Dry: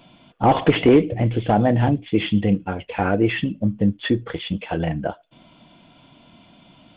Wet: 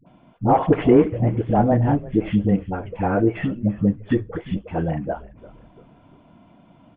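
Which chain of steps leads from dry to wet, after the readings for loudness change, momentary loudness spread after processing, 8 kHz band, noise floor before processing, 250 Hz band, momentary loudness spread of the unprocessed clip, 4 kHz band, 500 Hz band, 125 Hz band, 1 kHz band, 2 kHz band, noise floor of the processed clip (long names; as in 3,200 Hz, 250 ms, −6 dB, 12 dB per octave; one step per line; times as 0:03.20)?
−0.5 dB, 12 LU, can't be measured, −53 dBFS, 0.0 dB, 10 LU, below −10 dB, 0.0 dB, 0.0 dB, −0.5 dB, −6.5 dB, −53 dBFS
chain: low-pass filter 1,400 Hz 12 dB per octave
all-pass dispersion highs, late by 65 ms, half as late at 490 Hz
echo with shifted repeats 341 ms, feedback 48%, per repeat −100 Hz, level −19 dB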